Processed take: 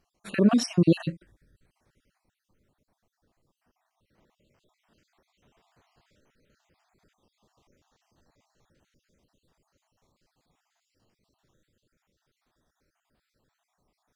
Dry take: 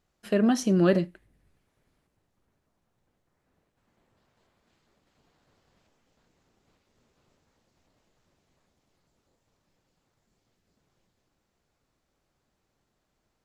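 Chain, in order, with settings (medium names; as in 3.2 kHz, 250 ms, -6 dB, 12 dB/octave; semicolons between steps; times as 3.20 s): random holes in the spectrogram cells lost 51%; tape speed -5%; trim +4.5 dB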